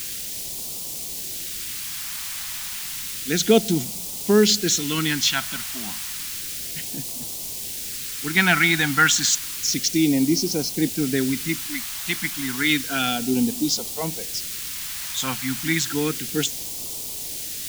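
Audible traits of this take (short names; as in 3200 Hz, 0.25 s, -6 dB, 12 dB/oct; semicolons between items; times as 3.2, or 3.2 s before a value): a quantiser's noise floor 6-bit, dither triangular; phasing stages 2, 0.31 Hz, lowest notch 410–1500 Hz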